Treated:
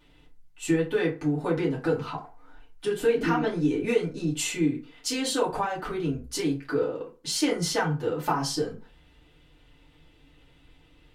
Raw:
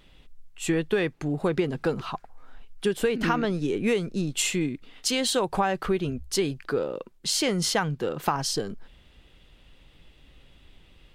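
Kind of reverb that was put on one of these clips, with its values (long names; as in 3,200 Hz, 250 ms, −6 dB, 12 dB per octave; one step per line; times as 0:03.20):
feedback delay network reverb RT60 0.34 s, low-frequency decay 0.9×, high-frequency decay 0.6×, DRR −6.5 dB
level −8.5 dB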